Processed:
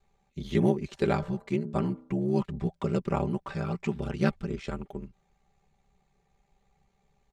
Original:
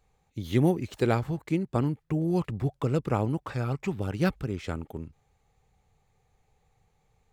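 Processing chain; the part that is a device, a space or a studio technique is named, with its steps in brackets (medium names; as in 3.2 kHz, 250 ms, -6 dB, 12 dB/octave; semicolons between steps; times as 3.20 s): 1.04–2.13 s: de-hum 95.04 Hz, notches 16; low-pass 7.5 kHz 12 dB/octave; ring-modulated robot voice (ring modulator 34 Hz; comb 5.1 ms, depth 72%)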